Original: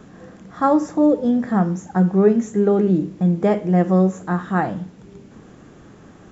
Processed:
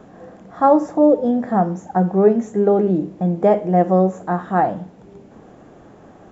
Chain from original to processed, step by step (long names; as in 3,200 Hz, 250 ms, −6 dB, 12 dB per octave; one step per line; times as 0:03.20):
drawn EQ curve 160 Hz 0 dB, 430 Hz +5 dB, 710 Hz +11 dB, 1,200 Hz +2 dB, 5,400 Hz −3 dB
level −3 dB